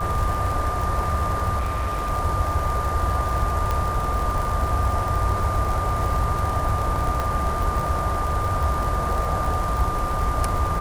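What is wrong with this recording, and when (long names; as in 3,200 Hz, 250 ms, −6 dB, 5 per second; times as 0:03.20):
surface crackle 73 per second −26 dBFS
whistle 1,200 Hz −26 dBFS
0:01.58–0:02.10: clipping −21 dBFS
0:03.71: click −11 dBFS
0:07.20: click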